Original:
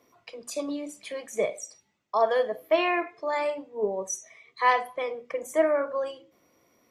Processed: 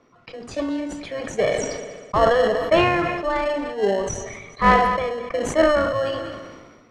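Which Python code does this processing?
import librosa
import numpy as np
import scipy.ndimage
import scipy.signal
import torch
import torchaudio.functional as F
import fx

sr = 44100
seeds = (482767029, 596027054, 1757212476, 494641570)

p1 = fx.peak_eq(x, sr, hz=1300.0, db=8.5, octaves=0.36)
p2 = fx.sample_hold(p1, sr, seeds[0], rate_hz=1200.0, jitter_pct=0)
p3 = p1 + (p2 * librosa.db_to_amplitude(-6.0))
p4 = fx.air_absorb(p3, sr, metres=120.0)
p5 = fx.echo_heads(p4, sr, ms=66, heads='first and third', feedback_pct=48, wet_db=-21.0)
p6 = fx.sustainer(p5, sr, db_per_s=38.0)
y = p6 * librosa.db_to_amplitude(3.5)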